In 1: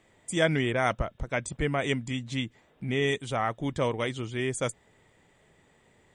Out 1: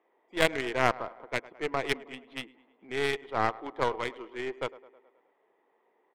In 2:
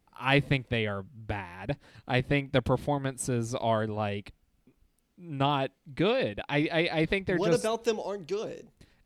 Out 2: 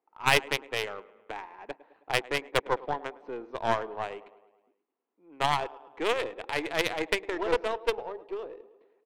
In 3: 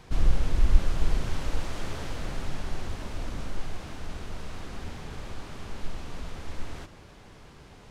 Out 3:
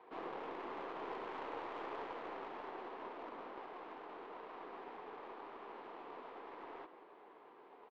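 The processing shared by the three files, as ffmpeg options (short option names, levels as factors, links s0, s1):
-filter_complex "[0:a]highpass=f=390:w=0.5412,highpass=f=390:w=1.3066,equalizer=f=580:t=q:w=4:g=-7,equalizer=f=1000:t=q:w=4:g=4,equalizer=f=1500:t=q:w=4:g=-4,lowpass=f=4200:w=0.5412,lowpass=f=4200:w=1.3066,aeval=exprs='0.266*(cos(1*acos(clip(val(0)/0.266,-1,1)))-cos(1*PI/2))+0.00596*(cos(7*acos(clip(val(0)/0.266,-1,1)))-cos(7*PI/2))':c=same,asplit=2[s0][s1];[s1]aecho=0:1:106|212|318|424|530|636:0.158|0.0935|0.0552|0.0326|0.0192|0.0113[s2];[s0][s2]amix=inputs=2:normalize=0,aeval=exprs='0.266*(cos(1*acos(clip(val(0)/0.266,-1,1)))-cos(1*PI/2))+0.0531*(cos(4*acos(clip(val(0)/0.266,-1,1)))-cos(4*PI/2))+0.0075*(cos(7*acos(clip(val(0)/0.266,-1,1)))-cos(7*PI/2))':c=same,adynamicsmooth=sensitivity=3:basefreq=1200,volume=1.5"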